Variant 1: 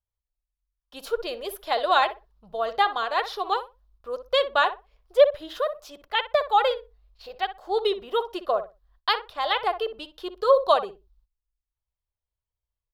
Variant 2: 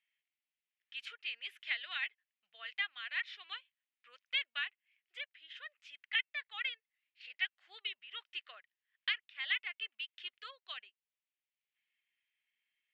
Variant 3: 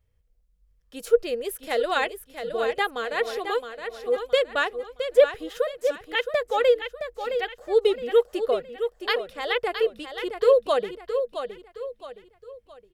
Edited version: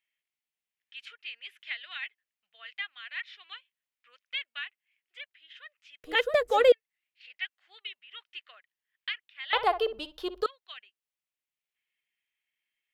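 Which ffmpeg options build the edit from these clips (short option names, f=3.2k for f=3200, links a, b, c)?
-filter_complex "[1:a]asplit=3[a][b][c];[a]atrim=end=6.042[d];[2:a]atrim=start=6.038:end=6.722[e];[b]atrim=start=6.718:end=9.532[f];[0:a]atrim=start=9.528:end=10.462[g];[c]atrim=start=10.458[h];[d][e]acrossfade=d=0.004:c1=hsin:c2=hsin[i];[i][f]acrossfade=d=0.004:c1=hsin:c2=hsin[j];[j][g]acrossfade=d=0.004:c1=hsin:c2=hsin[k];[k][h]acrossfade=d=0.004:c1=hsin:c2=hsin"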